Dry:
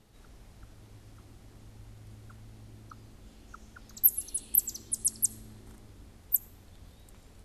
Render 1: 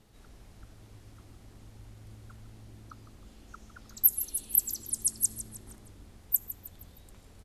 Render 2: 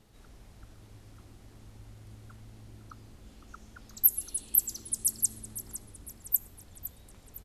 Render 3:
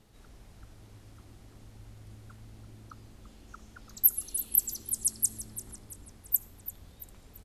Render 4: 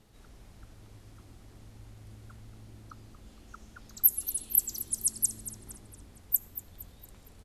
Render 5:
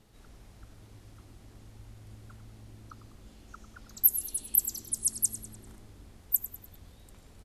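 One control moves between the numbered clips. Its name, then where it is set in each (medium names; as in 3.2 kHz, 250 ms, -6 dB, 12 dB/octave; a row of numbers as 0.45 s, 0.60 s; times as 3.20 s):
frequency-shifting echo, time: 156 ms, 509 ms, 338 ms, 231 ms, 99 ms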